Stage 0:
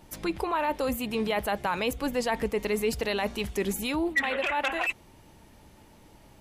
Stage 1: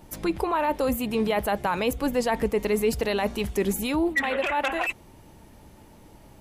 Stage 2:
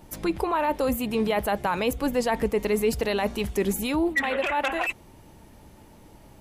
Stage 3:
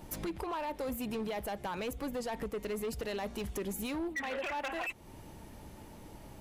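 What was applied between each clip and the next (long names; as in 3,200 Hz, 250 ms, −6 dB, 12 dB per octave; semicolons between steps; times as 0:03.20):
parametric band 3,300 Hz −4.5 dB 2.9 octaves; level +4.5 dB
no processing that can be heard
downward compressor 3 to 1, threshold −36 dBFS, peak gain reduction 12.5 dB; hard clipping −32 dBFS, distortion −14 dB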